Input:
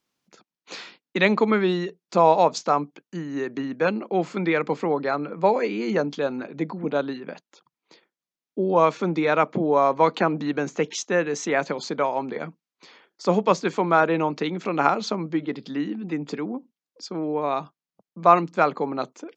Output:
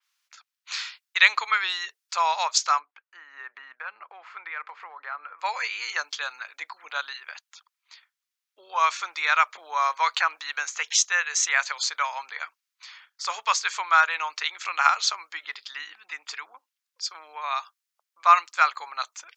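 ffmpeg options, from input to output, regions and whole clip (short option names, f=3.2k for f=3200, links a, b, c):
-filter_complex "[0:a]asettb=1/sr,asplit=3[a][b][c];[a]atrim=end=2.794[d];[b]atrim=start=2.79:end=5.39,asetpts=PTS-STARTPTS,afade=t=in:d=0.004:c=qsin,afade=t=out:st=2.596:d=0.004:c=qsin,lowpass=1.6k,acompressor=threshold=-26dB:ratio=5:attack=3.2:release=140:knee=1:detection=peak[e];[c]atrim=start=5.386[f];[d][e]acrossfade=d=0.004:c1=hsin:c2=qsin[g];[g][f]acrossfade=d=0.004:c1=qsin:c2=hsin,highpass=f=1.2k:w=0.5412,highpass=f=1.2k:w=1.3066,adynamicequalizer=threshold=0.00631:dfrequency=4500:dqfactor=0.7:tfrequency=4500:tqfactor=0.7:attack=5:release=100:ratio=0.375:range=3.5:mode=boostabove:tftype=highshelf,volume=5.5dB"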